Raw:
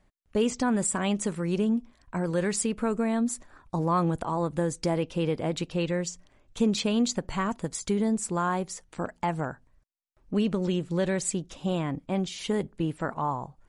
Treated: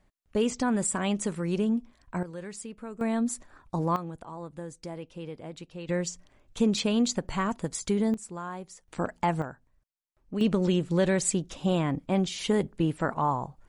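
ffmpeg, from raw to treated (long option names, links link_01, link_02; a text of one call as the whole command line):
ffmpeg -i in.wav -af "asetnsamples=nb_out_samples=441:pad=0,asendcmd='2.23 volume volume -12.5dB;3.01 volume volume -1dB;3.96 volume volume -12dB;5.89 volume volume 0dB;8.14 volume volume -10dB;8.88 volume volume 2dB;9.42 volume volume -5.5dB;10.41 volume volume 2.5dB',volume=-1dB" out.wav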